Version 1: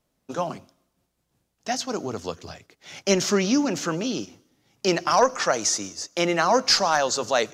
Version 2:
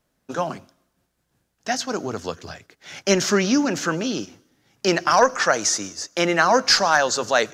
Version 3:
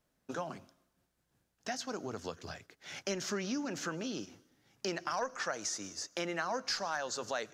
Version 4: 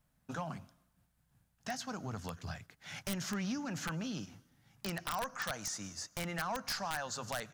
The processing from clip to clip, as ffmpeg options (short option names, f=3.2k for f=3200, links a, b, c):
-af "equalizer=f=1.6k:t=o:w=0.47:g=6.5,volume=2dB"
-af "acompressor=threshold=-31dB:ratio=2.5,volume=-7dB"
-af "aeval=exprs='(mod(17.8*val(0)+1,2)-1)/17.8':c=same,firequalizer=gain_entry='entry(150,0);entry(360,-17);entry(770,-7);entry(5800,-11);entry(9100,-5)':delay=0.05:min_phase=1,aeval=exprs='0.0422*(cos(1*acos(clip(val(0)/0.0422,-1,1)))-cos(1*PI/2))+0.0075*(cos(5*acos(clip(val(0)/0.0422,-1,1)))-cos(5*PI/2))':c=same,volume=2.5dB"